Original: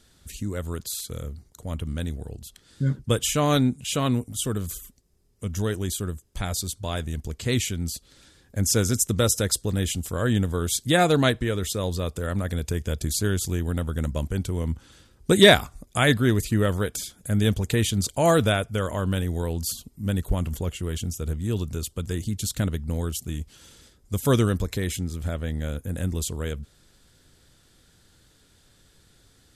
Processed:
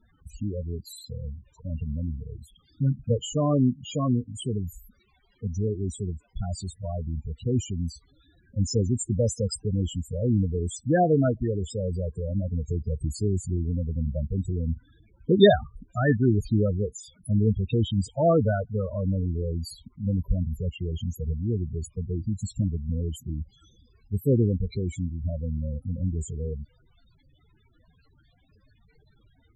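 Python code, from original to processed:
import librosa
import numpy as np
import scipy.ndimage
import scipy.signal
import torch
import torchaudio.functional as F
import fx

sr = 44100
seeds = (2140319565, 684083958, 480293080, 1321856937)

y = fx.dmg_crackle(x, sr, seeds[0], per_s=390.0, level_db=-35.0)
y = fx.spec_topn(y, sr, count=8)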